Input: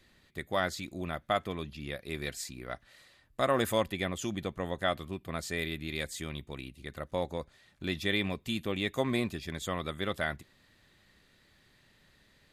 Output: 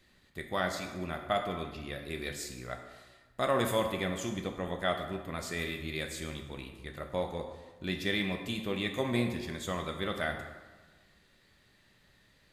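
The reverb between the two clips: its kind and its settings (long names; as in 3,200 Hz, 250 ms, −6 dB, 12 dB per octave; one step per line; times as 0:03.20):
dense smooth reverb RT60 1.3 s, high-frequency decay 0.65×, DRR 3.5 dB
level −2 dB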